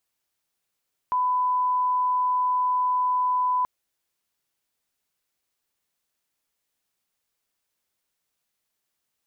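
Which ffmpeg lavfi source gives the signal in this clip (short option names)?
-f lavfi -i "sine=f=1000:d=2.53:r=44100,volume=-1.94dB"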